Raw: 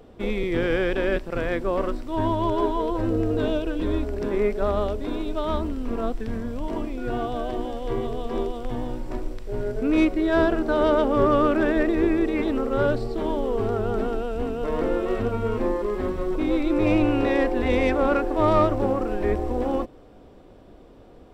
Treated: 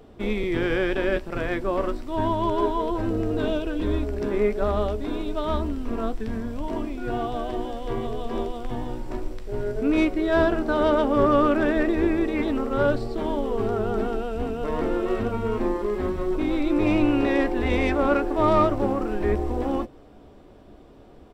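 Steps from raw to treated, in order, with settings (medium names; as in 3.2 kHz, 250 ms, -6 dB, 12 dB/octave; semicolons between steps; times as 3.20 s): band-stop 510 Hz, Q 13; doubling 14 ms -11.5 dB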